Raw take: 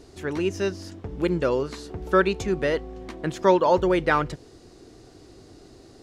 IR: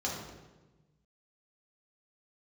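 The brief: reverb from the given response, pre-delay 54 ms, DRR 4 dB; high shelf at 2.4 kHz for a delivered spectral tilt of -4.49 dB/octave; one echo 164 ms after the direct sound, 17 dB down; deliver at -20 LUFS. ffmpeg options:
-filter_complex "[0:a]highshelf=f=2400:g=7.5,aecho=1:1:164:0.141,asplit=2[s0][s1];[1:a]atrim=start_sample=2205,adelay=54[s2];[s1][s2]afir=irnorm=-1:irlink=0,volume=0.316[s3];[s0][s3]amix=inputs=2:normalize=0,volume=1.19"

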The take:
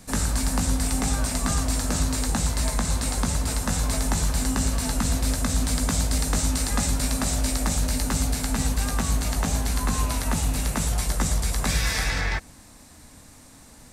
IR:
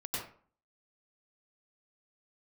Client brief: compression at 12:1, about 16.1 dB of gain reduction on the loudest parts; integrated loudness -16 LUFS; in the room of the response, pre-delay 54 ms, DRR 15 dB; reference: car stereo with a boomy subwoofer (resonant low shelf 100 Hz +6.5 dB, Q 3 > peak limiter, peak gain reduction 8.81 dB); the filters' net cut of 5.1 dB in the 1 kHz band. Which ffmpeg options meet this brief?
-filter_complex "[0:a]equalizer=f=1000:t=o:g=-6.5,acompressor=threshold=0.0158:ratio=12,asplit=2[s0][s1];[1:a]atrim=start_sample=2205,adelay=54[s2];[s1][s2]afir=irnorm=-1:irlink=0,volume=0.133[s3];[s0][s3]amix=inputs=2:normalize=0,lowshelf=f=100:t=q:w=3:g=6.5,volume=14.1,alimiter=limit=0.473:level=0:latency=1"

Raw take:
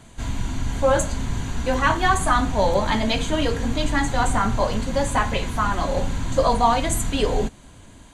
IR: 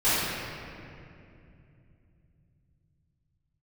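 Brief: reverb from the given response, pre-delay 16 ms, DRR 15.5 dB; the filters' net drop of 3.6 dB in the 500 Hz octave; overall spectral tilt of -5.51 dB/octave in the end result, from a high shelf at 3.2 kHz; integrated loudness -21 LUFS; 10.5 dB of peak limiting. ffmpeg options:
-filter_complex "[0:a]equalizer=f=500:t=o:g=-4,highshelf=f=3200:g=-7.5,alimiter=limit=0.141:level=0:latency=1,asplit=2[s0][s1];[1:a]atrim=start_sample=2205,adelay=16[s2];[s1][s2]afir=irnorm=-1:irlink=0,volume=0.0237[s3];[s0][s3]amix=inputs=2:normalize=0,volume=2.11"

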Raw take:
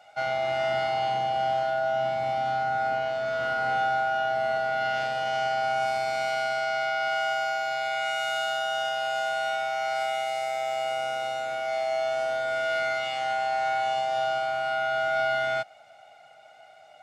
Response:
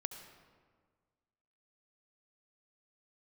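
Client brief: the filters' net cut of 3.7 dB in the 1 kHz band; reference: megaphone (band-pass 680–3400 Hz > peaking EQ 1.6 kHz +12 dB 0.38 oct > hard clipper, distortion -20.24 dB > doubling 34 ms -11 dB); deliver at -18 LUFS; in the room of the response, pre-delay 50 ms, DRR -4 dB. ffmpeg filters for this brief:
-filter_complex "[0:a]equalizer=f=1000:t=o:g=-7.5,asplit=2[s0][s1];[1:a]atrim=start_sample=2205,adelay=50[s2];[s1][s2]afir=irnorm=-1:irlink=0,volume=1.88[s3];[s0][s3]amix=inputs=2:normalize=0,highpass=680,lowpass=3400,equalizer=f=1600:t=o:w=0.38:g=12,asoftclip=type=hard:threshold=0.133,asplit=2[s4][s5];[s5]adelay=34,volume=0.282[s6];[s4][s6]amix=inputs=2:normalize=0,volume=1.5"

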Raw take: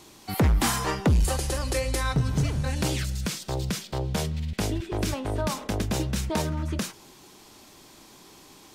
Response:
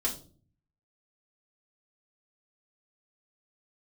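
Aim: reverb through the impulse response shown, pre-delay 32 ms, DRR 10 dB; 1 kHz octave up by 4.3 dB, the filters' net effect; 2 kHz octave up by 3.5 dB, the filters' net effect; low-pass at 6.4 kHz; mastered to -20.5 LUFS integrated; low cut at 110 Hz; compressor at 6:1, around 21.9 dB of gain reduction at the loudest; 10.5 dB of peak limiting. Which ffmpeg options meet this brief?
-filter_complex "[0:a]highpass=110,lowpass=6400,equalizer=f=1000:t=o:g=4.5,equalizer=f=2000:t=o:g=3,acompressor=threshold=0.00794:ratio=6,alimiter=level_in=4.22:limit=0.0631:level=0:latency=1,volume=0.237,asplit=2[s0][s1];[1:a]atrim=start_sample=2205,adelay=32[s2];[s1][s2]afir=irnorm=-1:irlink=0,volume=0.168[s3];[s0][s3]amix=inputs=2:normalize=0,volume=20"

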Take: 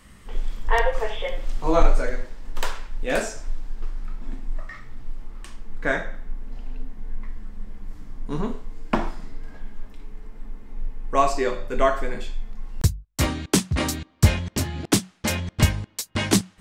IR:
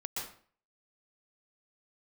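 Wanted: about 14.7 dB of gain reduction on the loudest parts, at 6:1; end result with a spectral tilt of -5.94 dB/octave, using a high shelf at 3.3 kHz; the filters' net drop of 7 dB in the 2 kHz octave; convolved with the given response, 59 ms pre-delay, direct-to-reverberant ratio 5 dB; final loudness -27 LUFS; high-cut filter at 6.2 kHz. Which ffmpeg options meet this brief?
-filter_complex "[0:a]lowpass=6200,equalizer=f=2000:t=o:g=-6.5,highshelf=f=3300:g=-8,acompressor=threshold=0.0631:ratio=6,asplit=2[s0][s1];[1:a]atrim=start_sample=2205,adelay=59[s2];[s1][s2]afir=irnorm=-1:irlink=0,volume=0.447[s3];[s0][s3]amix=inputs=2:normalize=0,volume=2.24"

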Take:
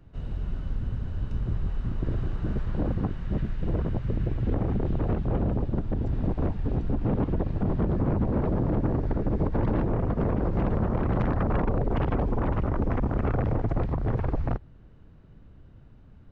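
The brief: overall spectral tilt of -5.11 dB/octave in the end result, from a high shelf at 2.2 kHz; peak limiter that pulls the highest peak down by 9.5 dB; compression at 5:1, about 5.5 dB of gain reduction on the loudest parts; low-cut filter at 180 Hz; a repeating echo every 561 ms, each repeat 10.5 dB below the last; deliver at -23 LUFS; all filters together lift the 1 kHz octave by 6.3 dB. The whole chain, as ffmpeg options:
-af "highpass=180,equalizer=f=1000:t=o:g=6.5,highshelf=f=2200:g=8,acompressor=threshold=0.0355:ratio=5,alimiter=level_in=1.5:limit=0.0631:level=0:latency=1,volume=0.668,aecho=1:1:561|1122|1683:0.299|0.0896|0.0269,volume=5.31"

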